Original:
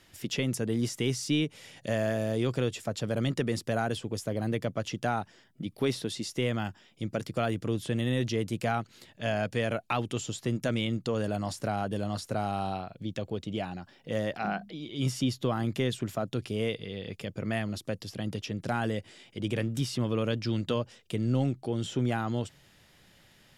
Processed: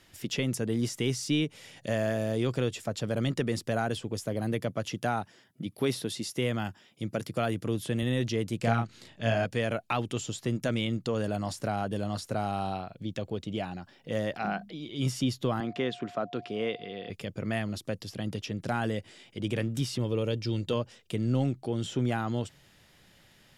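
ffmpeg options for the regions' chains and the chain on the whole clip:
-filter_complex "[0:a]asettb=1/sr,asplit=3[s0][s1][s2];[s0]atrim=end=4.264[s3];[s1]atrim=start=4.26:end=8.03,asetpts=PTS-STARTPTS,afade=t=in:d=0.004:c=qsin,afade=t=out:st=3.766:d=0.004:c=qsin,highpass=63,equalizer=f=11000:w=3.4:g=8.5[s4];[s2]atrim=start=8.026[s5];[s3][s4]acrossfade=d=0.004:c1=hsin:c2=qsin[s6];[s6][s5]acrossfade=d=0.004:c1=qsin:c2=hsin,asettb=1/sr,asplit=3[s7][s8][s9];[s7]atrim=end=8.594[s10];[s8]atrim=start=8.59:end=9.45,asetpts=PTS-STARTPTS,afade=t=in:d=0.004:c=qsin,afade=t=out:st=0.856:d=0.004:c=qsin,lowpass=9600,bass=f=250:g=3,treble=f=4000:g=0,asplit=2[s11][s12];[s12]adelay=35,volume=0.631[s13];[s11][s13]amix=inputs=2:normalize=0,atrim=end_sample=37926[s14];[s9]atrim=start=9.446[s15];[s10][s14]acrossfade=d=0.004:c1=hsin:c2=qsin[s16];[s16][s15]acrossfade=d=0.004:c1=qsin:c2=hsin,asettb=1/sr,asplit=3[s17][s18][s19];[s17]atrim=end=15.604[s20];[s18]atrim=start=15.6:end=17.1,asetpts=PTS-STARTPTS,afade=t=in:d=0.004:c=qsin,afade=t=out:st=1.496:d=0.004:c=qsin,equalizer=f=1200:t=o:w=0.85:g=3,aeval=exprs='val(0)+0.00501*sin(2*PI*710*n/s)':c=same,highpass=210,lowpass=3800[s21];[s19]atrim=start=17.096[s22];[s20][s21]acrossfade=d=0.004:c1=hsin:c2=qsin[s23];[s23][s22]acrossfade=d=0.004:c1=qsin:c2=hsin,asettb=1/sr,asplit=3[s24][s25][s26];[s24]atrim=end=19.984[s27];[s25]atrim=start=19.98:end=20.73,asetpts=PTS-STARTPTS,afade=t=in:d=0.004:c=qsin,afade=t=out:st=0.746:d=0.004:c=qsin,equalizer=f=1400:t=o:w=1.3:g=-7.5,aecho=1:1:2.2:0.33,atrim=end_sample=33075[s28];[s26]atrim=start=20.726[s29];[s27][s28]acrossfade=d=0.004:c1=hsin:c2=qsin[s30];[s30][s29]acrossfade=d=0.004:c1=qsin:c2=hsin"

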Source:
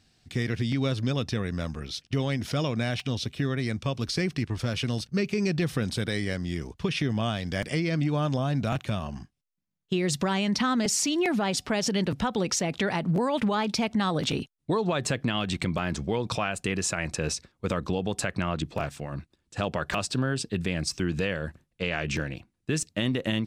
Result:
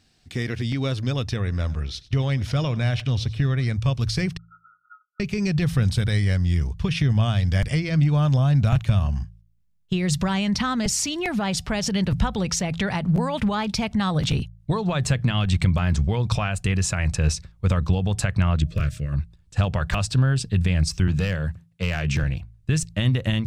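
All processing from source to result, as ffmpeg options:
-filter_complex "[0:a]asettb=1/sr,asplit=3[s0][s1][s2];[s0]atrim=end=1.364[s3];[s1]atrim=start=1.36:end=3.74,asetpts=PTS-STARTPTS,afade=t=in:d=0.004:c=qsin,afade=t=out:st=2.376:d=0.004:c=qsin,highshelf=f=9900:g=-11,aecho=1:1:95|190:0.1|0.025,atrim=end_sample=104958[s4];[s2]atrim=start=3.736[s5];[s3][s4]acrossfade=d=0.004:c1=hsin:c2=qsin[s6];[s6][s5]acrossfade=d=0.004:c1=qsin:c2=hsin,asettb=1/sr,asplit=3[s7][s8][s9];[s7]atrim=end=4.374[s10];[s8]atrim=start=4.37:end=5.2,asetpts=PTS-STARTPTS,afade=t=in:d=0.004:c=qsin,afade=t=out:st=0.826:d=0.004:c=qsin,asuperpass=centerf=1000:order=20:qfactor=5,afreqshift=350[s11];[s9]atrim=start=5.196[s12];[s10][s11]acrossfade=d=0.004:c1=hsin:c2=qsin[s13];[s13][s12]acrossfade=d=0.004:c1=qsin:c2=hsin,asettb=1/sr,asplit=3[s14][s15][s16];[s14]atrim=end=18.564[s17];[s15]atrim=start=18.56:end=19.13,asetpts=PTS-STARTPTS,afade=t=in:d=0.004:c=qsin,afade=t=out:st=0.566:d=0.004:c=qsin,aeval=exprs='val(0)+0.00224*sin(2*PI*620*n/s)':c=same,asuperstop=centerf=820:order=4:qfactor=1.2[s18];[s16]atrim=start=19.126[s19];[s17][s18]acrossfade=d=0.004:c1=hsin:c2=qsin[s20];[s20][s19]acrossfade=d=0.004:c1=qsin:c2=hsin,asettb=1/sr,asplit=3[s21][s22][s23];[s21]atrim=end=21.074[s24];[s22]atrim=start=21.07:end=22.23,asetpts=PTS-STARTPTS,afade=t=in:d=0.004:c=qsin,afade=t=out:st=1.156:d=0.004:c=qsin,highpass=f=86:w=0.5412,highpass=f=86:w=1.3066,asoftclip=type=hard:threshold=0.0944[s25];[s23]atrim=start=22.226[s26];[s24][s25]acrossfade=d=0.004:c1=hsin:c2=qsin[s27];[s27][s26]acrossfade=d=0.004:c1=qsin:c2=hsin,asubboost=boost=11:cutoff=91,bandreject=f=55.79:t=h:w=4,bandreject=f=111.58:t=h:w=4,bandreject=f=167.37:t=h:w=4,volume=1.26"

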